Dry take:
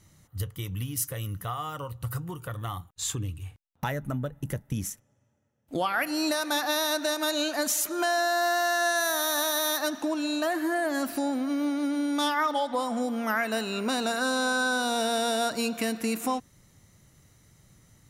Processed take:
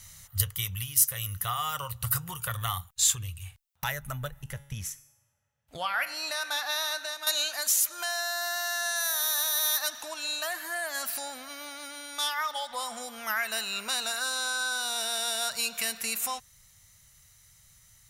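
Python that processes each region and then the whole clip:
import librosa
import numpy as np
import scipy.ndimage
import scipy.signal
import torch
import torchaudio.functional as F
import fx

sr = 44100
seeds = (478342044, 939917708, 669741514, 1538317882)

y = fx.chain(x, sr, fx.lowpass(hz=2600.0, slope=6),
    fx.comb_fb(f0_hz=140.0, decay_s=0.75, harmonics='all', damping=0.0, mix_pct=60), at=(4.42, 7.27))
y = fx.high_shelf(y, sr, hz=12000.0, db=5.5)
y = fx.rider(y, sr, range_db=10, speed_s=0.5)
y = fx.tone_stack(y, sr, knobs='10-0-10')
y = F.gain(torch.from_numpy(y), 5.0).numpy()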